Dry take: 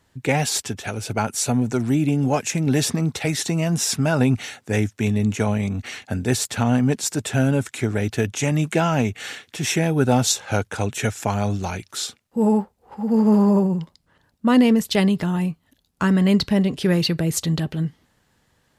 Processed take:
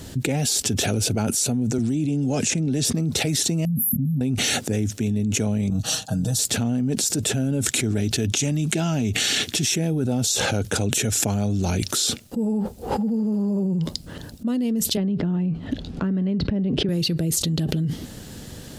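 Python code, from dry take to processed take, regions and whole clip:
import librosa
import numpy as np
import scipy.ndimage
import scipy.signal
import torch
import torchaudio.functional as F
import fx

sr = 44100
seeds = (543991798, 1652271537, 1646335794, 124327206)

y = fx.chain(x, sr, fx.lowpass(hz=9600.0, slope=24),
    fx.band_squash(depth_pct=40), at=(1.78, 2.85))
y = fx.chain(y, sr, fx.brickwall_bandstop(low_hz=270.0, high_hz=11000.0),
    fx.low_shelf(hz=95.0, db=-12.0), at=(3.65, 4.21))
y = fx.chain(y, sr, fx.fixed_phaser(hz=890.0, stages=4),
    fx.comb(ms=6.3, depth=0.83),
    fx.upward_expand(threshold_db=-40.0, expansion=1.5), at=(5.7, 6.39))
y = fx.chain(y, sr, fx.notch(hz=500.0, q=6.6),
    fx.dynamic_eq(hz=4500.0, q=0.72, threshold_db=-41.0, ratio=4.0, max_db=5), at=(7.83, 9.74))
y = fx.chain(y, sr, fx.lowpass(hz=2000.0, slope=12),
    fx.band_squash(depth_pct=70), at=(14.97, 16.89))
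y = fx.graphic_eq(y, sr, hz=(250, 1000, 2000), db=(3, -11, -8))
y = fx.env_flatten(y, sr, amount_pct=100)
y = y * librosa.db_to_amplitude(-13.5)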